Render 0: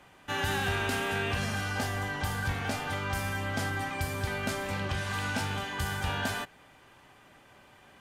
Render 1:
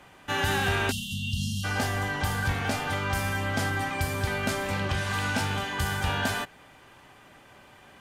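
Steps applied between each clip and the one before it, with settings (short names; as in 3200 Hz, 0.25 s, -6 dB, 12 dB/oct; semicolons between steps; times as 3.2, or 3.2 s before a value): spectral delete 0.91–1.64, 240–2700 Hz; gain +4 dB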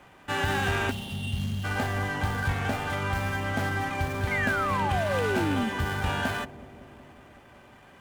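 median filter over 9 samples; painted sound fall, 4.31–5.7, 210–2200 Hz -29 dBFS; analogue delay 0.186 s, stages 1024, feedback 75%, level -15.5 dB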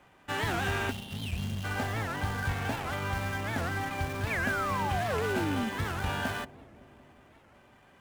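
in parallel at -9 dB: bit-crush 5-bit; on the sum: record warp 78 rpm, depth 250 cents; gain -6.5 dB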